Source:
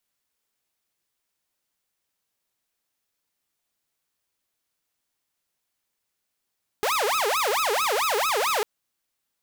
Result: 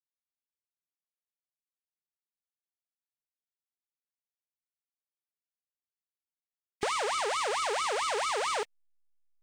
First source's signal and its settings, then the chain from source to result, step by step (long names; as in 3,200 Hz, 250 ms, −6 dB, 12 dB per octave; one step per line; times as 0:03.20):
siren wail 404–1,300 Hz 4.5 per second saw −19 dBFS 1.80 s
hearing-aid frequency compression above 1,800 Hz 1.5 to 1
slack as between gear wheels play −45.5 dBFS
downward compressor, threshold −28 dBFS